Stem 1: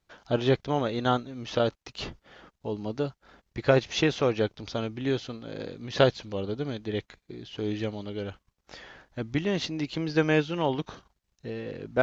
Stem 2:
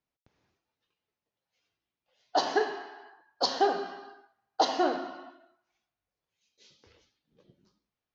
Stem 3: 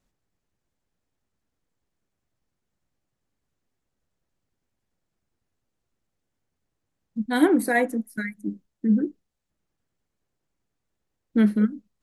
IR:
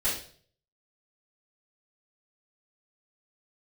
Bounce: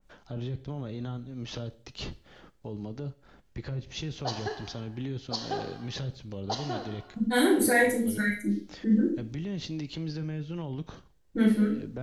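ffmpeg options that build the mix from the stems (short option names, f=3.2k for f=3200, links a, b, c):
-filter_complex "[0:a]acrossover=split=220[a][b];[b]acompressor=threshold=-33dB:ratio=10[c];[a][c]amix=inputs=2:normalize=0,volume=-5dB,asplit=2[d][e];[e]volume=-23dB[f];[1:a]adelay=1900,volume=-9dB[g];[2:a]acompressor=threshold=-20dB:ratio=6,volume=-2.5dB,asplit=3[h][i][j];[i]volume=-4.5dB[k];[j]apad=whole_len=530480[l];[d][l]sidechaincompress=threshold=-41dB:ratio=8:attack=16:release=127[m];[m][h]amix=inputs=2:normalize=0,lowshelf=f=360:g=8.5,alimiter=level_in=3.5dB:limit=-24dB:level=0:latency=1:release=12,volume=-3.5dB,volume=0dB[n];[3:a]atrim=start_sample=2205[o];[f][k]amix=inputs=2:normalize=0[p];[p][o]afir=irnorm=-1:irlink=0[q];[g][n][q]amix=inputs=3:normalize=0,adynamicequalizer=threshold=0.00398:dfrequency=2800:dqfactor=0.7:tfrequency=2800:tqfactor=0.7:attack=5:release=100:ratio=0.375:range=3.5:mode=boostabove:tftype=highshelf"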